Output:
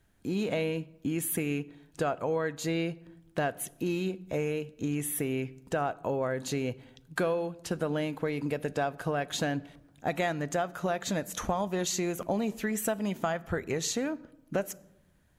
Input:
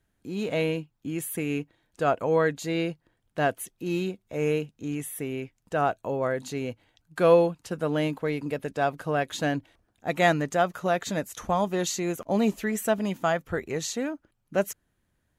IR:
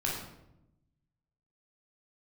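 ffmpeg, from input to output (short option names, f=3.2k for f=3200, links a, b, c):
-filter_complex "[0:a]acompressor=threshold=-33dB:ratio=6,asplit=2[a][b];[1:a]atrim=start_sample=2205[c];[b][c]afir=irnorm=-1:irlink=0,volume=-22.5dB[d];[a][d]amix=inputs=2:normalize=0,volume=5dB"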